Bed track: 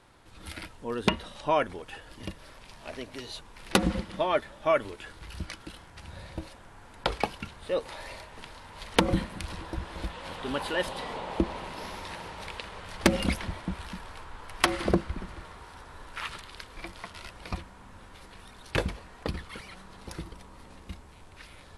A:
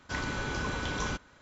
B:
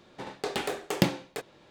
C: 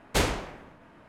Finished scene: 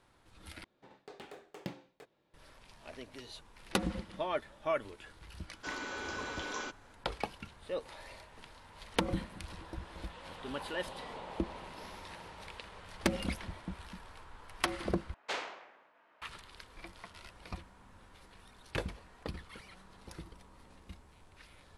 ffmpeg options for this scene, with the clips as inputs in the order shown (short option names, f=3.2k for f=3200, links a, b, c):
-filter_complex "[0:a]volume=-8.5dB[a];[2:a]highshelf=f=4.8k:g=-8[b];[1:a]highpass=f=270:w=0.5412,highpass=f=270:w=1.3066[c];[3:a]highpass=640,lowpass=4.4k[d];[a]asplit=3[e][f][g];[e]atrim=end=0.644[h];[b]atrim=end=1.7,asetpts=PTS-STARTPTS,volume=-18dB[i];[f]atrim=start=2.336:end=15.144[j];[d]atrim=end=1.08,asetpts=PTS-STARTPTS,volume=-8.5dB[k];[g]atrim=start=16.216[l];[c]atrim=end=1.41,asetpts=PTS-STARTPTS,volume=-5dB,afade=t=in:d=0.004:c=hsin,afade=t=out:st=1.406:d=0.004:c=hsin,adelay=5540[m];[h][i]acrossfade=d=0.004:c1=hsin:c2=hsin[n];[n][j]acrossfade=d=0.004:c1=hsin:c2=hsin[o];[o][k]acrossfade=d=0.004:c1=hsin:c2=hsin[p];[p][l]acrossfade=d=0.004:c1=hsin:c2=hsin[q];[q][m]amix=inputs=2:normalize=0"